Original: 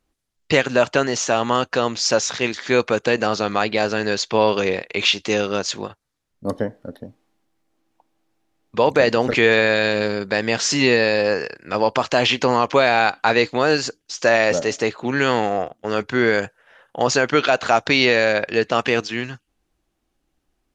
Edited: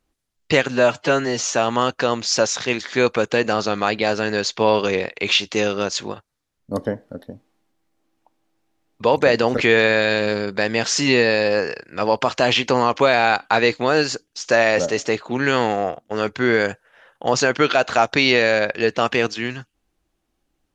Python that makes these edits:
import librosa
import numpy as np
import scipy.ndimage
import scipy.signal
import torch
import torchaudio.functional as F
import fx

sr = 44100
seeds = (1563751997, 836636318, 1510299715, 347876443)

y = fx.edit(x, sr, fx.stretch_span(start_s=0.71, length_s=0.53, factor=1.5), tone=tone)